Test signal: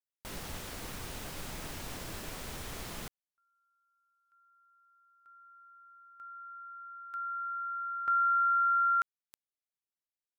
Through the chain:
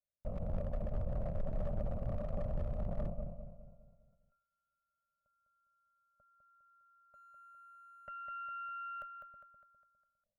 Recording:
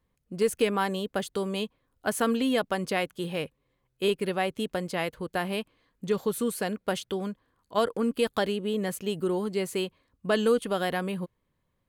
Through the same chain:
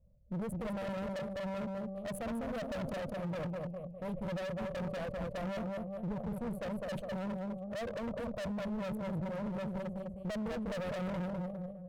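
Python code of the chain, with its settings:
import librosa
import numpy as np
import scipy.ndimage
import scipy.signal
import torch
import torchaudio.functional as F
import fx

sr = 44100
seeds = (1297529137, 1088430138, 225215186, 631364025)

p1 = fx.wiener(x, sr, points=25)
p2 = fx.over_compress(p1, sr, threshold_db=-34.0, ratio=-0.5)
p3 = p1 + F.gain(torch.from_numpy(p2), -2.5).numpy()
p4 = fx.curve_eq(p3, sr, hz=(220.0, 340.0, 590.0, 870.0, 1400.0, 5000.0, 11000.0), db=(0, -29, 12, -15, -14, -29, -14))
p5 = p4 + fx.echo_feedback(p4, sr, ms=203, feedback_pct=47, wet_db=-6, dry=0)
p6 = np.clip(p5, -10.0 ** (-32.0 / 20.0), 10.0 ** (-32.0 / 20.0))
p7 = fx.low_shelf(p6, sr, hz=120.0, db=10.5)
p8 = fx.cheby_harmonics(p7, sr, harmonics=(4,), levels_db=(-18,), full_scale_db=-21.5)
p9 = fx.sustainer(p8, sr, db_per_s=87.0)
y = F.gain(torch.from_numpy(p9), -6.0).numpy()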